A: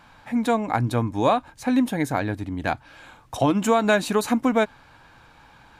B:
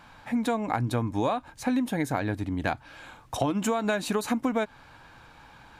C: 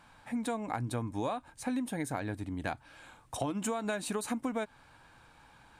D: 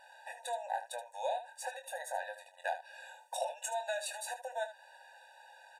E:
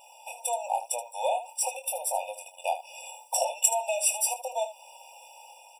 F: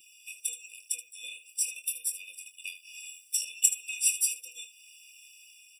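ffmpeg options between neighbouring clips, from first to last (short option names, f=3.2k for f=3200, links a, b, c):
-af "acompressor=threshold=-23dB:ratio=6"
-af "equalizer=f=8.8k:w=2.9:g=10.5,volume=-7.5dB"
-filter_complex "[0:a]asplit=2[a][b];[b]acompressor=threshold=-41dB:ratio=6,volume=-1dB[c];[a][c]amix=inputs=2:normalize=0,aecho=1:1:23|77:0.422|0.251,afftfilt=real='re*eq(mod(floor(b*sr/1024/490),2),1)':imag='im*eq(mod(floor(b*sr/1024/490),2),1)':win_size=1024:overlap=0.75,volume=-1.5dB"
-af "crystalizer=i=4:c=0,dynaudnorm=f=120:g=7:m=3dB,afftfilt=real='re*eq(mod(floor(b*sr/1024/1200),2),0)':imag='im*eq(mod(floor(b*sr/1024/1200),2),0)':win_size=1024:overlap=0.75,volume=4dB"
-af "asuperstop=centerf=890:order=20:qfactor=0.6"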